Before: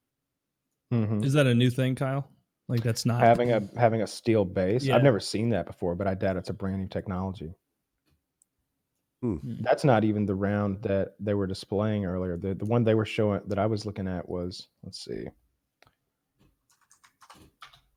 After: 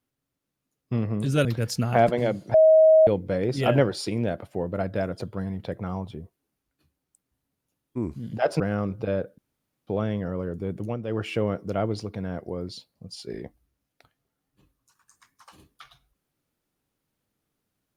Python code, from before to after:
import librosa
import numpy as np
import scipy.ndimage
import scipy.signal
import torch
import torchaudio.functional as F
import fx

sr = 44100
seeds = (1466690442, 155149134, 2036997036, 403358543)

y = fx.edit(x, sr, fx.cut(start_s=1.45, length_s=1.27),
    fx.bleep(start_s=3.81, length_s=0.53, hz=634.0, db=-11.5),
    fx.cut(start_s=9.87, length_s=0.55),
    fx.room_tone_fill(start_s=11.2, length_s=0.49),
    fx.fade_down_up(start_s=12.55, length_s=0.58, db=-10.0, fade_s=0.24, curve='qsin'), tone=tone)